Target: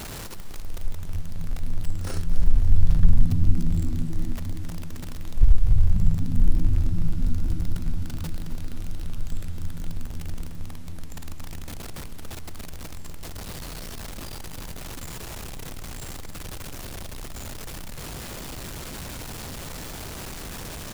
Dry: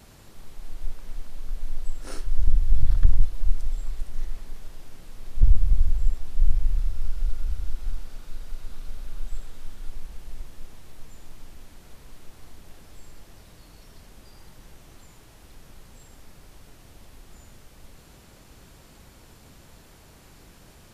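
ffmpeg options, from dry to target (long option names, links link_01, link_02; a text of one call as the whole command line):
ffmpeg -i in.wav -filter_complex "[0:a]aeval=exprs='val(0)+0.5*0.0266*sgn(val(0))':channel_layout=same,asplit=5[link_01][link_02][link_03][link_04][link_05];[link_02]adelay=261,afreqshift=77,volume=-14dB[link_06];[link_03]adelay=522,afreqshift=154,volume=-20.6dB[link_07];[link_04]adelay=783,afreqshift=231,volume=-27.1dB[link_08];[link_05]adelay=1044,afreqshift=308,volume=-33.7dB[link_09];[link_01][link_06][link_07][link_08][link_09]amix=inputs=5:normalize=0" out.wav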